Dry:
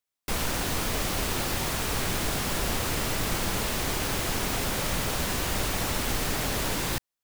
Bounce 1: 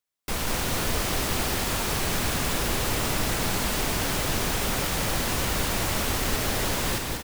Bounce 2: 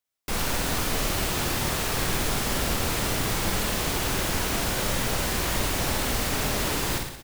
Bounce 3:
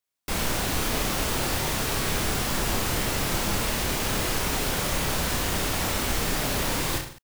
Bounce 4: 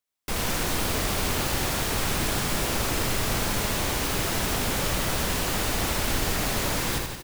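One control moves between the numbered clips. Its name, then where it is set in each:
reverse bouncing-ball echo, first gap: 190, 50, 30, 80 ms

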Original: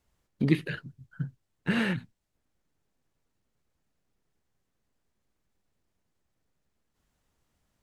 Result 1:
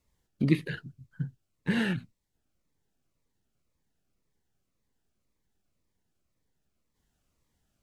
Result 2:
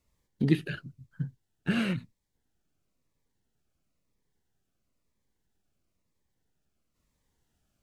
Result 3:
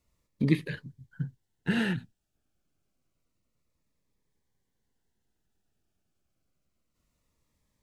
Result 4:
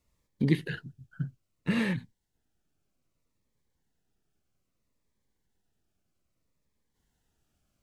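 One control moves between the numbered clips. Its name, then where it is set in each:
cascading phaser, rate: 1.9, 1, 0.28, 0.62 Hz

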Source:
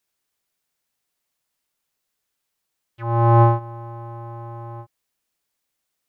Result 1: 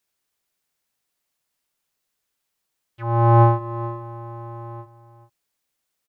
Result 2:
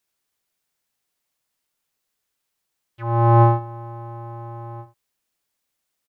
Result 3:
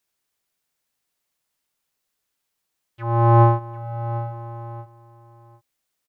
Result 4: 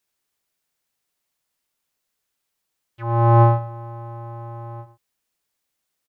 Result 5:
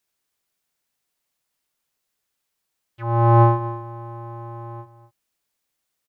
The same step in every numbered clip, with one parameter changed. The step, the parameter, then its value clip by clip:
echo, time: 432, 75, 748, 110, 246 ms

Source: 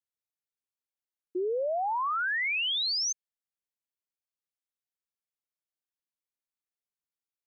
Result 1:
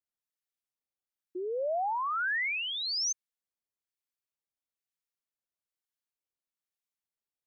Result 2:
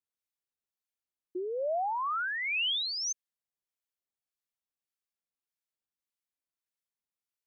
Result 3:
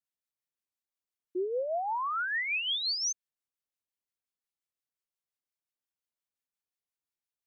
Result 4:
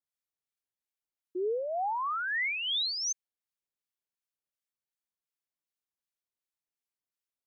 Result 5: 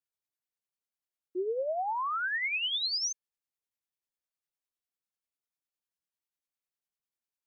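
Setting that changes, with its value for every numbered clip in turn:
harmonic tremolo, rate: 1.1, 1.7, 5.7, 2.7, 10 Hz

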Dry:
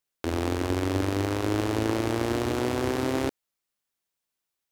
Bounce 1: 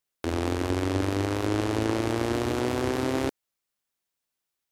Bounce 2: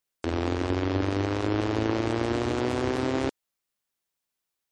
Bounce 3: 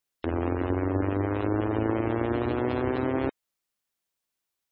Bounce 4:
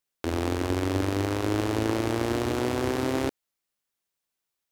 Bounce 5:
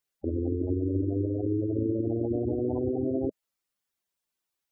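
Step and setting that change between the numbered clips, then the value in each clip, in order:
spectral gate, under each frame's peak: -45, -35, -25, -60, -10 dB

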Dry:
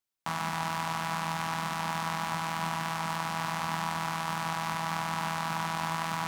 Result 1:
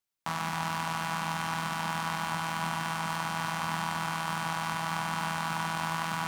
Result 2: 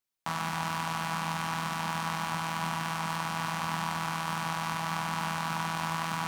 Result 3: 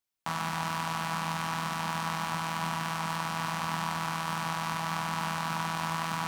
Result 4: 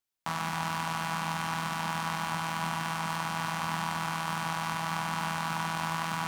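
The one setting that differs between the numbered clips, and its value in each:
Schroeder reverb, RT60: 3.8, 0.73, 0.33, 1.8 s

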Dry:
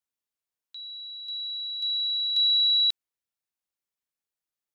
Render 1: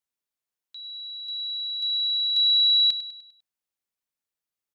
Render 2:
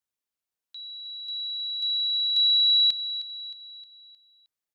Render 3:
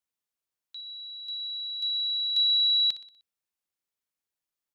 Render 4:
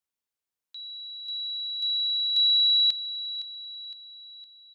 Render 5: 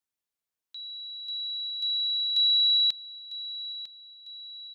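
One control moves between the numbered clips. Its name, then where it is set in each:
feedback echo, time: 100, 311, 61, 512, 950 ms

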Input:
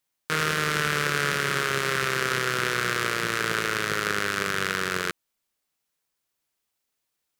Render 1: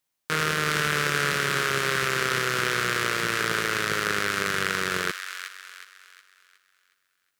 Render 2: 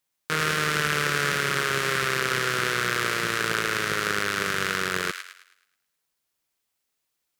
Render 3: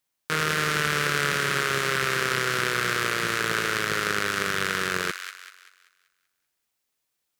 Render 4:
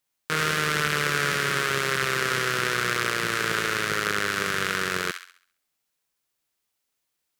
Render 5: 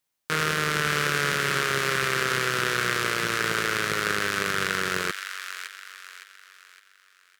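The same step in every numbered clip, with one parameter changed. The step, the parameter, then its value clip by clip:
thin delay, time: 365, 107, 193, 67, 562 ms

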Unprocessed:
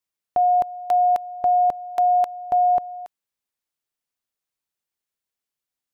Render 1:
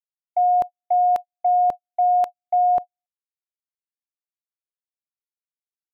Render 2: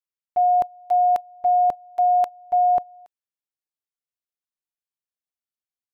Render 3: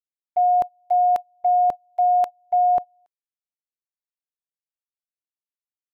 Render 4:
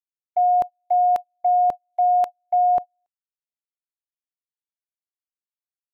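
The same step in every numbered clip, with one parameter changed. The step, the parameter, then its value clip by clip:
gate, range: -60, -12, -26, -40 dB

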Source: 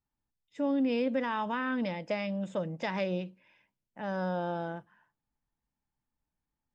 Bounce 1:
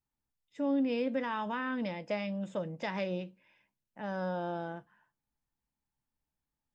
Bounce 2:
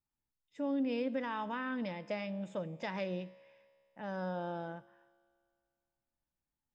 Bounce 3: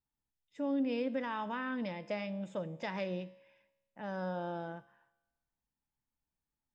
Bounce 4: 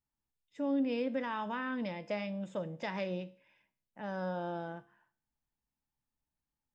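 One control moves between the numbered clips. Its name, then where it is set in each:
resonator, decay: 0.15, 2.2, 1.1, 0.5 s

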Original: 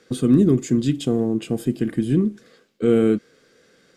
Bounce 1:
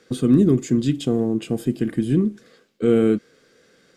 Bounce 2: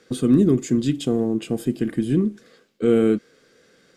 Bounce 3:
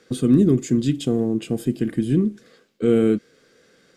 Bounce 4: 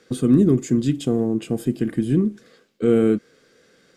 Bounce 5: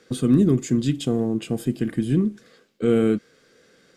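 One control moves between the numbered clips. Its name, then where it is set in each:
dynamic EQ, frequency: 9900, 110, 1000, 3600, 350 Hz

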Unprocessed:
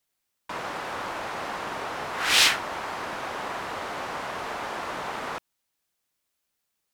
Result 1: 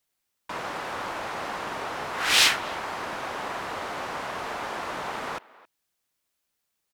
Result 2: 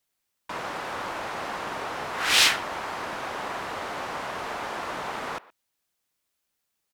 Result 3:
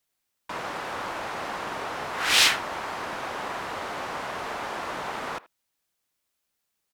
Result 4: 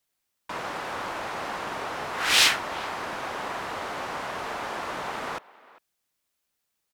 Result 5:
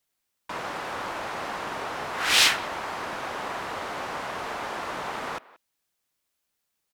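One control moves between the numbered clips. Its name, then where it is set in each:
speakerphone echo, time: 270, 120, 80, 400, 180 ms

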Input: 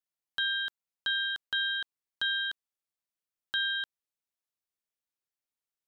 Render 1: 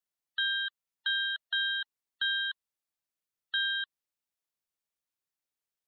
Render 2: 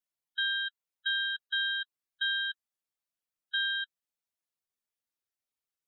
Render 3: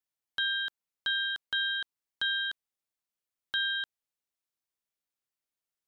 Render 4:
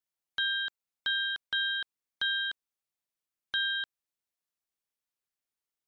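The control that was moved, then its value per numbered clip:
spectral gate, under each frame's peak: -25, -10, -55, -45 dB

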